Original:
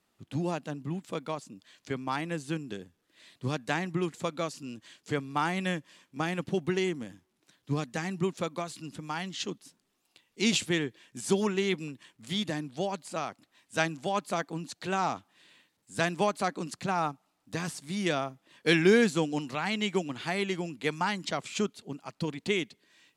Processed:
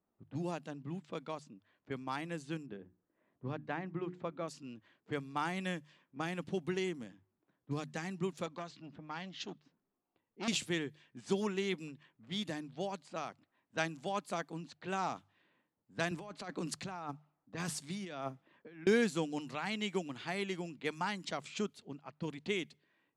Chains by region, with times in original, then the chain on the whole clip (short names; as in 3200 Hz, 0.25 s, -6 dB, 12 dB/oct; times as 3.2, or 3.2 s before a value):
2.66–4.48 Bessel low-pass 1600 Hz + notches 60/120/180/240/300/360 Hz
8.46–10.48 LPF 6800 Hz 24 dB/oct + core saturation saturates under 1700 Hz
16.11–18.87 negative-ratio compressor -35 dBFS + three-band expander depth 40%
whole clip: notches 50/100/150 Hz; low-pass opened by the level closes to 920 Hz, open at -29 dBFS; gain -7 dB